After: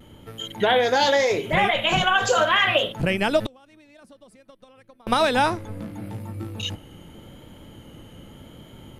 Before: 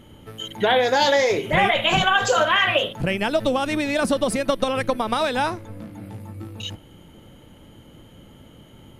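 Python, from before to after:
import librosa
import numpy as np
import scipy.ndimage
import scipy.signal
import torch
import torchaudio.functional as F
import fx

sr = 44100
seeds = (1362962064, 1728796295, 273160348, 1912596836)

y = fx.rider(x, sr, range_db=10, speed_s=2.0)
y = fx.vibrato(y, sr, rate_hz=0.84, depth_cents=34.0)
y = fx.gate_flip(y, sr, shuts_db=-21.0, range_db=-31, at=(3.46, 5.07))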